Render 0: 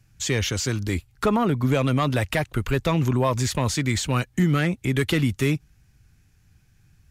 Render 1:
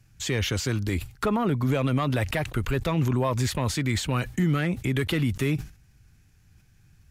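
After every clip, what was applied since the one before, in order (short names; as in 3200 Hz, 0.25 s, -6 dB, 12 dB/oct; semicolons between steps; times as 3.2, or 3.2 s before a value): dynamic EQ 6400 Hz, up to -6 dB, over -44 dBFS, Q 1.2; limiter -16.5 dBFS, peak gain reduction 5 dB; sustainer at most 150 dB/s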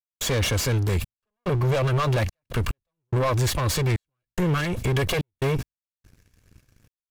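minimum comb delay 1.8 ms; sample leveller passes 2; step gate ".xxxx..xxxx.x." 72 bpm -60 dB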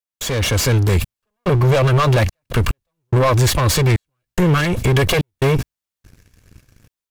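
AGC gain up to 6.5 dB; gain +1.5 dB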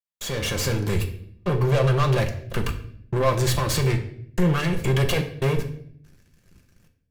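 reverb RT60 0.65 s, pre-delay 5 ms, DRR 3.5 dB; gain -8.5 dB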